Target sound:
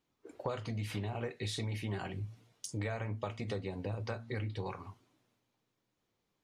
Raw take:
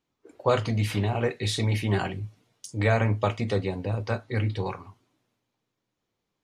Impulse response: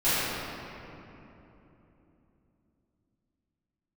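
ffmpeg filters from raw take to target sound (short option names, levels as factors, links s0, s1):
-filter_complex "[0:a]asettb=1/sr,asplit=3[s0][s1][s2];[s0]atrim=end=2.244[s3];[s1]atrim=start=2.24:end=4.41,asetpts=PTS-STARTPTS,afade=t=in:d=0.004:c=qsin,afade=t=out:st=2.166:d=0.004:c=qsin,bandreject=f=114.8:t=h:w=4,bandreject=f=229.6:t=h:w=4[s4];[s2]atrim=start=4.406[s5];[s3][s4]acrossfade=d=0.004:c1=hsin:c2=qsin[s6];[s6][s5]acrossfade=d=0.004:c1=qsin:c2=hsin,acompressor=threshold=0.02:ratio=6,volume=0.891"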